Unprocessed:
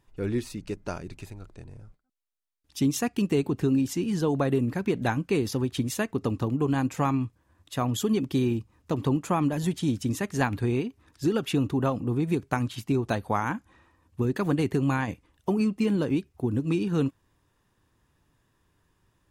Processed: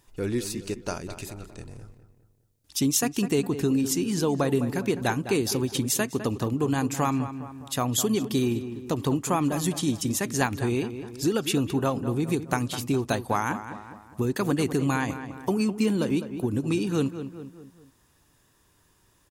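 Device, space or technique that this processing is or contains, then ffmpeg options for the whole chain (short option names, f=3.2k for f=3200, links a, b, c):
parallel compression: -filter_complex "[0:a]bass=f=250:g=-3,treble=f=4k:g=9,asplit=2[a][b];[b]adelay=205,lowpass=f=2.4k:p=1,volume=-11.5dB,asplit=2[c][d];[d]adelay=205,lowpass=f=2.4k:p=1,volume=0.44,asplit=2[e][f];[f]adelay=205,lowpass=f=2.4k:p=1,volume=0.44,asplit=2[g][h];[h]adelay=205,lowpass=f=2.4k:p=1,volume=0.44[i];[a][c][e][g][i]amix=inputs=5:normalize=0,asplit=2[j][k];[k]acompressor=threshold=-38dB:ratio=6,volume=-2.5dB[l];[j][l]amix=inputs=2:normalize=0"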